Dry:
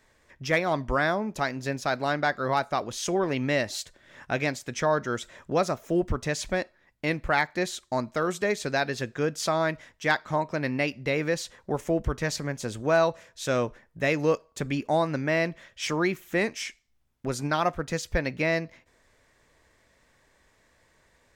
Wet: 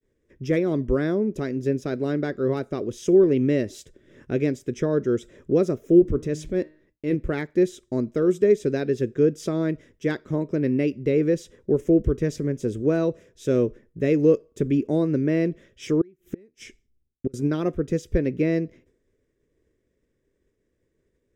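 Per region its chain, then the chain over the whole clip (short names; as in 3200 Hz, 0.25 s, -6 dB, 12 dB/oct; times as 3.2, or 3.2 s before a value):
5.99–7.15 de-hum 154.5 Hz, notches 29 + transient shaper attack -6 dB, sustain 0 dB
16.01–17.34 de-esser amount 35% + low shelf 120 Hz +6.5 dB + flipped gate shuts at -20 dBFS, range -34 dB
whole clip: expander -55 dBFS; resonant low shelf 570 Hz +12 dB, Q 3; notch 4300 Hz, Q 5.4; gain -7.5 dB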